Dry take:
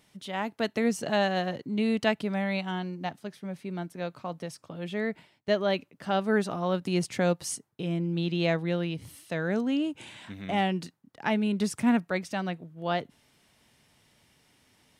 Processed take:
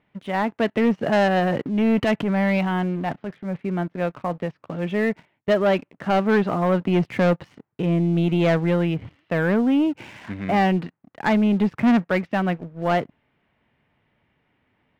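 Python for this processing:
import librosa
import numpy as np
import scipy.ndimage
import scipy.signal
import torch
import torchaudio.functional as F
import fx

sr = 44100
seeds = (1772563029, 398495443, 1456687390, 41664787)

y = scipy.signal.sosfilt(scipy.signal.butter(4, 2500.0, 'lowpass', fs=sr, output='sos'), x)
y = fx.leveller(y, sr, passes=2)
y = fx.transient(y, sr, attack_db=-6, sustain_db=6, at=(1.39, 3.62))
y = y * 10.0 ** (2.5 / 20.0)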